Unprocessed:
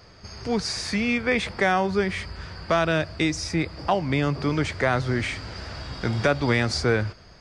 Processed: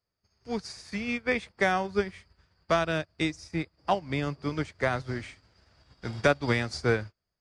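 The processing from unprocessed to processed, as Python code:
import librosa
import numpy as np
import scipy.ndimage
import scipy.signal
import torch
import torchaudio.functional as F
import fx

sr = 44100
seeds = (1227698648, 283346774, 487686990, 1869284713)

y = fx.high_shelf(x, sr, hz=8300.0, db=7.5)
y = fx.upward_expand(y, sr, threshold_db=-42.0, expansion=2.5)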